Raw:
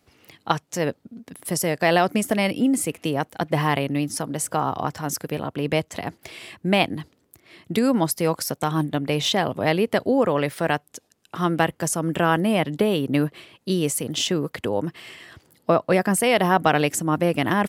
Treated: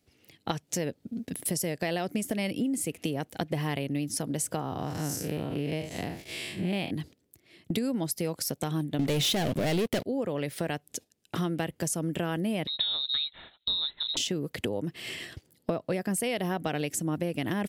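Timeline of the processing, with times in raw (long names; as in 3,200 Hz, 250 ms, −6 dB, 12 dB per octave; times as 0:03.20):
0:04.61–0:06.91: spectrum smeared in time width 130 ms
0:08.99–0:10.05: leveller curve on the samples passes 5
0:12.67–0:14.17: voice inversion scrambler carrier 4,000 Hz
whole clip: noise gate −44 dBFS, range −13 dB; parametric band 1,100 Hz −10.5 dB 1.3 octaves; downward compressor 5 to 1, threshold −36 dBFS; level +7 dB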